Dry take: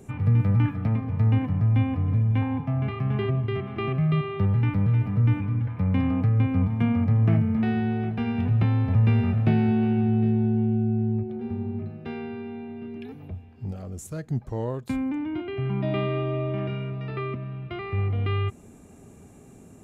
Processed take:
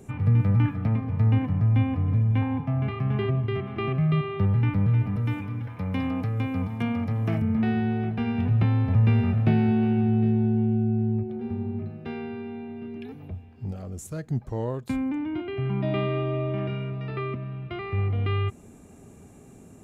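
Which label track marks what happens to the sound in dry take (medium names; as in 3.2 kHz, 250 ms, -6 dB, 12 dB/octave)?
5.160000	7.420000	tone controls bass -7 dB, treble +11 dB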